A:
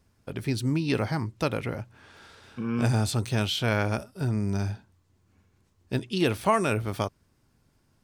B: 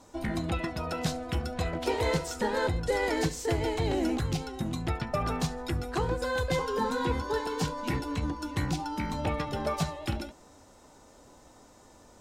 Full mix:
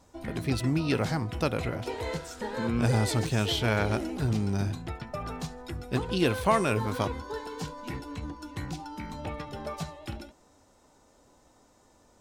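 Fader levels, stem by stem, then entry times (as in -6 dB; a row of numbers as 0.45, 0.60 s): -1.0, -6.0 dB; 0.00, 0.00 s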